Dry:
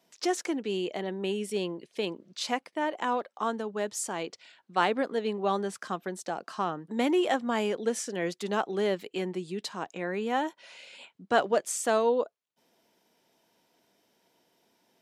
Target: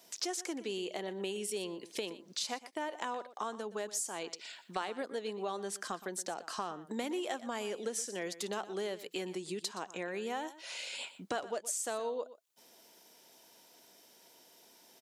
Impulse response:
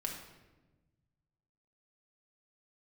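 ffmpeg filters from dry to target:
-af "bass=f=250:g=-7,treble=f=4000:g=9,acompressor=threshold=0.00708:ratio=4,aecho=1:1:120:0.168,volume=1.88"

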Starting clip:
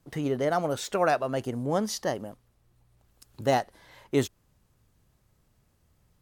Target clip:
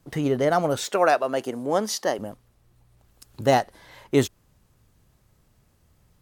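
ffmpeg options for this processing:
-filter_complex "[0:a]asettb=1/sr,asplit=3[s0][s1][s2];[s0]atrim=end=0.894[s3];[s1]atrim=start=0.89:end=2.19,asetpts=PTS-STARTPTS,afade=t=in:d=0.004:c=qsin,afade=t=out:st=1.296:d=0.004:c=qsin,highpass=280[s4];[s2]atrim=start=2.186[s5];[s3][s4]acrossfade=d=0.004:c1=hsin:c2=qsin[s6];[s6][s5]acrossfade=d=0.004:c1=qsin:c2=hsin,volume=1.78"

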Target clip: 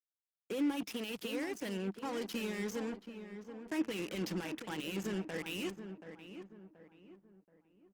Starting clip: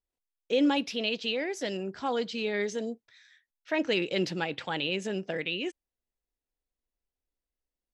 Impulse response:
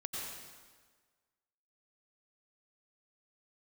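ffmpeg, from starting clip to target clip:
-filter_complex "[0:a]alimiter=level_in=1.26:limit=0.0631:level=0:latency=1:release=41,volume=0.794,adynamicequalizer=threshold=0.00316:dfrequency=340:dqfactor=3.3:tfrequency=340:tqfactor=3.3:attack=5:release=100:ratio=0.375:range=3:mode=cutabove:tftype=bell,acrusher=bits=5:mix=0:aa=0.5,highpass=f=120:p=1,areverse,acompressor=mode=upward:threshold=0.0126:ratio=2.5,areverse,equalizer=f=200:t=o:w=0.33:g=8,equalizer=f=315:t=o:w=0.33:g=10,equalizer=f=630:t=o:w=0.33:g=-5,equalizer=f=4000:t=o:w=0.33:g=-6,asplit=2[s0][s1];[s1]adelay=729,lowpass=f=1600:p=1,volume=0.355,asplit=2[s2][s3];[s3]adelay=729,lowpass=f=1600:p=1,volume=0.4,asplit=2[s4][s5];[s5]adelay=729,lowpass=f=1600:p=1,volume=0.4,asplit=2[s6][s7];[s7]adelay=729,lowpass=f=1600:p=1,volume=0.4[s8];[s2][s4][s6][s8]amix=inputs=4:normalize=0[s9];[s0][s9]amix=inputs=2:normalize=0,volume=0.596" -ar 48000 -c:a libopus -b:a 32k

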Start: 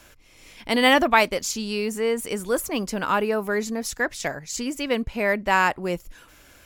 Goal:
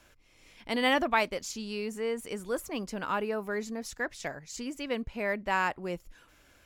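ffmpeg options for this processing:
-af "highshelf=f=8200:g=-7,volume=0.376"

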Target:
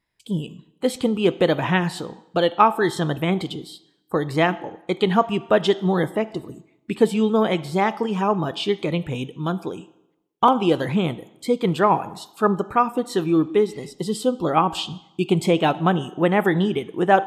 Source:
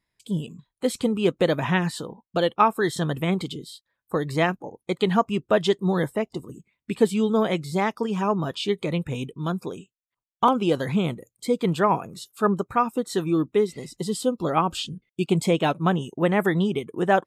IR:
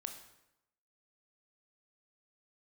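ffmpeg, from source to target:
-filter_complex "[0:a]asplit=2[s0][s1];[s1]equalizer=f=315:t=o:w=0.33:g=9,equalizer=f=800:t=o:w=0.33:g=8,equalizer=f=3150:t=o:w=0.33:g=6,equalizer=f=6300:t=o:w=0.33:g=6[s2];[1:a]atrim=start_sample=2205,lowpass=5000,lowshelf=f=250:g=-7[s3];[s2][s3]afir=irnorm=-1:irlink=0,volume=0.562[s4];[s0][s4]amix=inputs=2:normalize=0"

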